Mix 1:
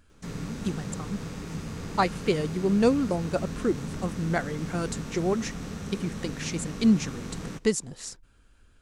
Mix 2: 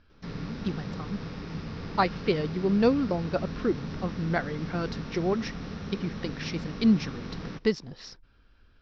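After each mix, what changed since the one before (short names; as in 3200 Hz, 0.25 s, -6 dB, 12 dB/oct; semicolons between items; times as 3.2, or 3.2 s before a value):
master: add Chebyshev low-pass 5500 Hz, order 6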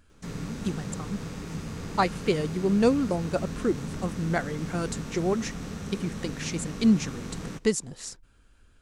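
master: remove Chebyshev low-pass 5500 Hz, order 6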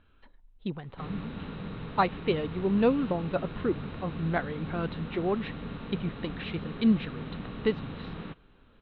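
background: entry +0.75 s; master: add rippled Chebyshev low-pass 4000 Hz, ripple 3 dB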